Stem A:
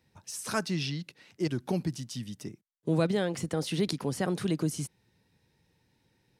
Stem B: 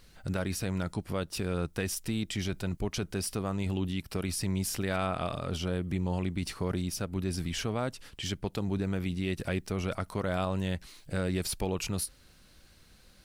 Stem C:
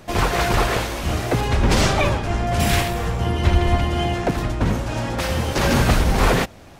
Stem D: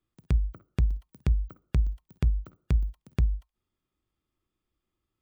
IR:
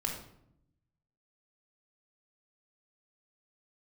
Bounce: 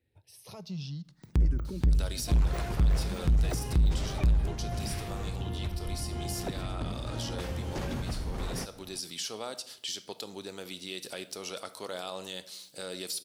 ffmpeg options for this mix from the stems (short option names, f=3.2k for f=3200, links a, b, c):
-filter_complex "[0:a]alimiter=limit=-23dB:level=0:latency=1:release=16,asplit=2[a][b];[b]afreqshift=0.48[c];[a][c]amix=inputs=2:normalize=1,volume=-10dB,asplit=2[d][e];[e]volume=-18.5dB[f];[1:a]highpass=500,highshelf=f=2.9k:t=q:w=1.5:g=10,alimiter=limit=-20.5dB:level=0:latency=1:release=105,adelay=1650,volume=-6dB,asplit=2[g][h];[h]volume=-9.5dB[i];[2:a]adelay=2200,volume=-13.5dB[j];[3:a]adelay=1050,volume=2dB,asplit=2[k][l];[l]volume=-10.5dB[m];[d][g][j]amix=inputs=3:normalize=0,lowshelf=f=430:g=8,acompressor=threshold=-31dB:ratio=6,volume=0dB[n];[4:a]atrim=start_sample=2205[o];[f][i][m]amix=inputs=3:normalize=0[p];[p][o]afir=irnorm=-1:irlink=0[q];[k][n][q]amix=inputs=3:normalize=0,asoftclip=type=tanh:threshold=-18.5dB"